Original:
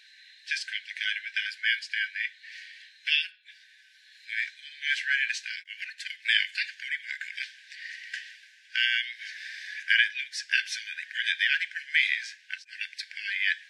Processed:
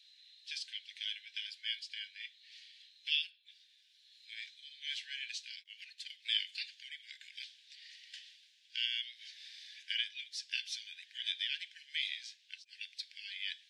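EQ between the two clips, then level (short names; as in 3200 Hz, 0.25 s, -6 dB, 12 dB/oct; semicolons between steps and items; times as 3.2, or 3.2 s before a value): ladder high-pass 2900 Hz, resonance 45%; -1.5 dB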